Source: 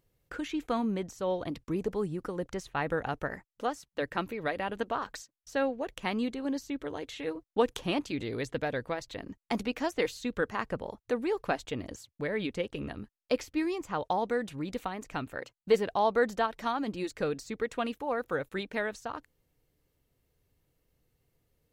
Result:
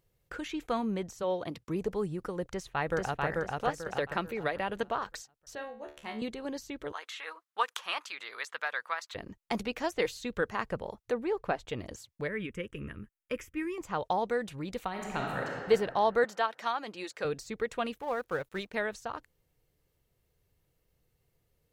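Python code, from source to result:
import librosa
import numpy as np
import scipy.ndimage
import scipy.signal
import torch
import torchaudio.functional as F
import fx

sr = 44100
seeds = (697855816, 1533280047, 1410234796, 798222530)

y = fx.highpass(x, sr, hz=fx.line((1.22, 230.0), (1.74, 67.0)), slope=12, at=(1.22, 1.74), fade=0.02)
y = fx.echo_throw(y, sr, start_s=2.43, length_s=0.83, ms=440, feedback_pct=35, wet_db=-1.5)
y = fx.band_squash(y, sr, depth_pct=70, at=(3.86, 4.83))
y = fx.comb_fb(y, sr, f0_hz=73.0, decay_s=0.37, harmonics='all', damping=0.0, mix_pct=90, at=(5.55, 6.22))
y = fx.highpass_res(y, sr, hz=1200.0, q=2.5, at=(6.92, 9.15))
y = fx.high_shelf(y, sr, hz=3200.0, db=-11.0, at=(11.11, 11.68), fade=0.02)
y = fx.fixed_phaser(y, sr, hz=1800.0, stages=4, at=(12.28, 13.78))
y = fx.reverb_throw(y, sr, start_s=14.89, length_s=0.66, rt60_s=2.3, drr_db=-2.5)
y = fx.weighting(y, sr, curve='A', at=(16.24, 17.25))
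y = fx.law_mismatch(y, sr, coded='A', at=(18.0, 18.74))
y = fx.peak_eq(y, sr, hz=270.0, db=-8.0, octaves=0.31)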